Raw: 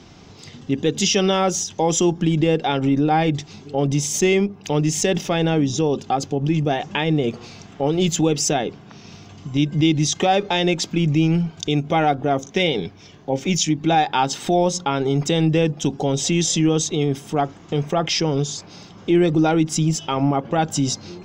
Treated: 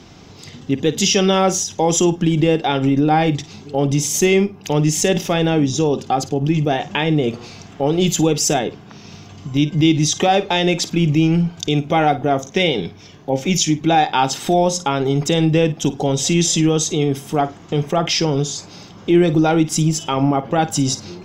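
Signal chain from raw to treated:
parametric band 12,000 Hz +12.5 dB 0.3 octaves
on a send: flutter between parallel walls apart 9 metres, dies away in 0.22 s
on the sum: level +2.5 dB

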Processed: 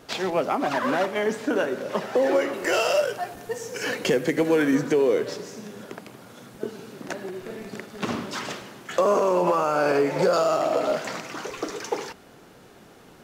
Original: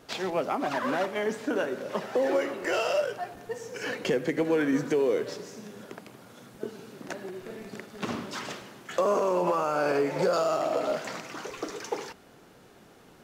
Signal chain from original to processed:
0:02.53–0:04.75: parametric band 13,000 Hz +6.5 dB 1.9 octaves
level +4.5 dB

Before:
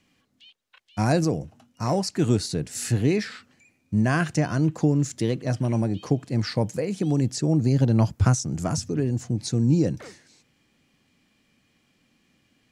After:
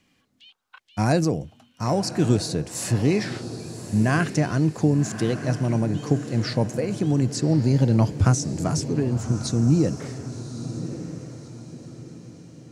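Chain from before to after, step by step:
feedback delay with all-pass diffusion 1,144 ms, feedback 41%, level −11 dB
gain on a spectral selection 0:00.51–0:00.78, 710–1,600 Hz +10 dB
level +1 dB

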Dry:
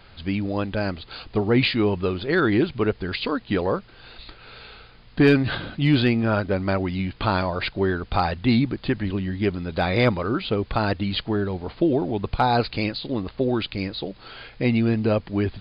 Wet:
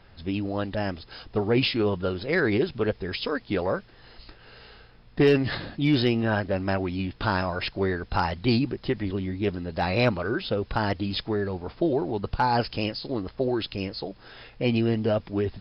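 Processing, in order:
formants moved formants +2 semitones
one half of a high-frequency compander decoder only
level −3 dB

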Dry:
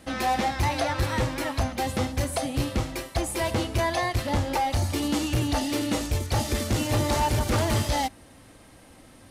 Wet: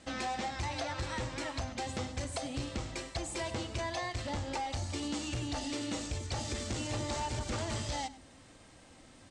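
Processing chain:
elliptic low-pass filter 8,000 Hz, stop band 80 dB
high-shelf EQ 5,900 Hz +7.5 dB
hum removal 52.56 Hz, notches 9
downward compressor 3 to 1, threshold −30 dBFS, peak gain reduction 7 dB
single-tap delay 100 ms −18 dB
level −5 dB

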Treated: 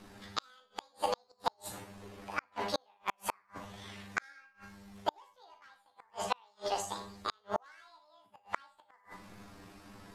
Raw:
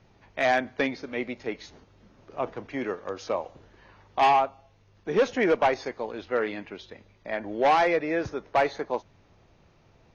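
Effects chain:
pitch shift by two crossfaded delay taps +12 semitones
dynamic equaliser 830 Hz, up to +5 dB, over −44 dBFS, Q 6.8
four-comb reverb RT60 0.35 s, combs from 28 ms, DRR 5 dB
gate with flip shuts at −22 dBFS, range −42 dB
level +5.5 dB

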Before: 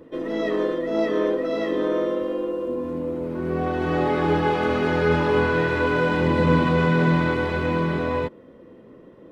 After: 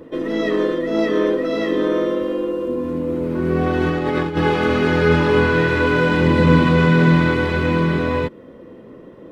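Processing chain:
dynamic equaliser 730 Hz, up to −6 dB, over −37 dBFS, Q 1.2
0:03.09–0:04.37: compressor whose output falls as the input rises −25 dBFS, ratio −0.5
level +6.5 dB

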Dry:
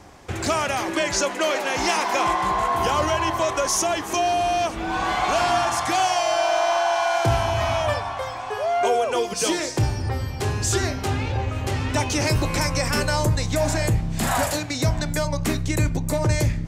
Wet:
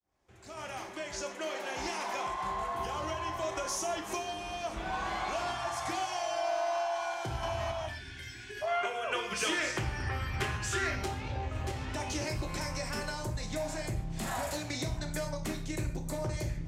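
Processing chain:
fade in at the beginning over 4.96 s
sample-and-hold tremolo
downward compressor 6 to 1, threshold −34 dBFS, peak gain reduction 16 dB
0:07.87–0:08.62: gain on a spectral selection 410–1,400 Hz −28 dB
0:08.67–0:10.96: flat-topped bell 1,900 Hz +10.5 dB
reverb whose tail is shaped and stops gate 170 ms falling, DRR 4 dB
highs frequency-modulated by the lows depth 0.13 ms

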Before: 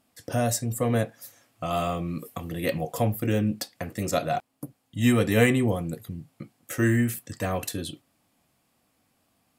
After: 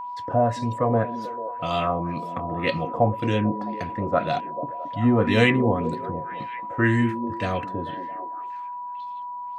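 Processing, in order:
echo through a band-pass that steps 220 ms, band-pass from 270 Hz, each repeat 0.7 octaves, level −7.5 dB
auto-filter low-pass sine 1.9 Hz 750–4,700 Hz
steady tone 980 Hz −32 dBFS
level +1 dB

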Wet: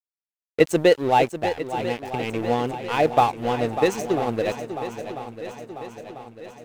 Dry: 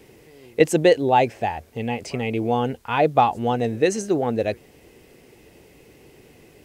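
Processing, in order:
dead-zone distortion −31 dBFS
feedback echo with a long and a short gap by turns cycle 994 ms, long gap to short 1.5 to 1, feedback 52%, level −11 dB

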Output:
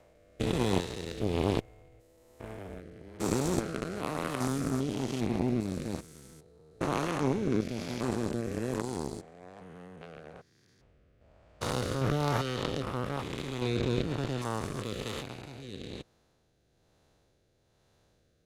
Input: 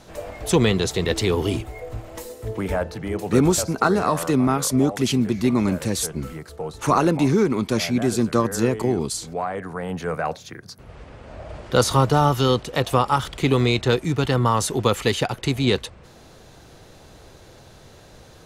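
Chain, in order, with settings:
spectrum averaged block by block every 400 ms
harmonic generator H 3 −19 dB, 4 −14 dB, 6 −20 dB, 7 −22 dB, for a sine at −8 dBFS
rotating-speaker cabinet horn 1.1 Hz

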